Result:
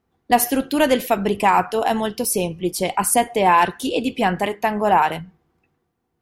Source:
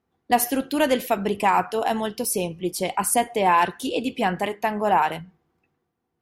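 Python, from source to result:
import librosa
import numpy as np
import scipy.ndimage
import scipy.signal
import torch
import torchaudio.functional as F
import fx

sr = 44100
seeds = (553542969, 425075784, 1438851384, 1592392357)

y = fx.low_shelf(x, sr, hz=62.0, db=8.0)
y = y * librosa.db_to_amplitude(3.5)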